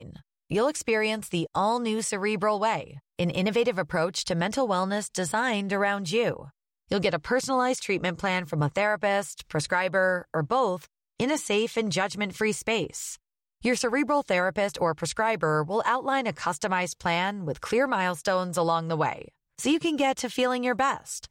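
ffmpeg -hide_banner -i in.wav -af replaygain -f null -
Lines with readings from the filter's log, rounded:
track_gain = +7.4 dB
track_peak = 0.189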